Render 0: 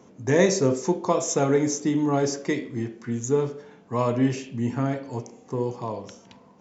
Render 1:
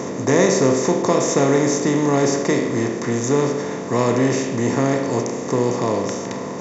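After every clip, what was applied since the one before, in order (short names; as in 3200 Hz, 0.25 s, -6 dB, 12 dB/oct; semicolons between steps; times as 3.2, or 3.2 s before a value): per-bin compression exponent 0.4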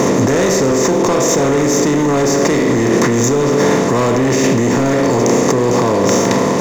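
sample leveller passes 3; in parallel at +2 dB: negative-ratio compressor -14 dBFS, ratio -0.5; on the sum: gain -7 dB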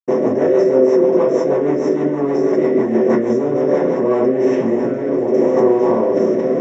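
reverb RT60 0.45 s, pre-delay 77 ms; rotary speaker horn 6.3 Hz, later 0.8 Hz, at 3.71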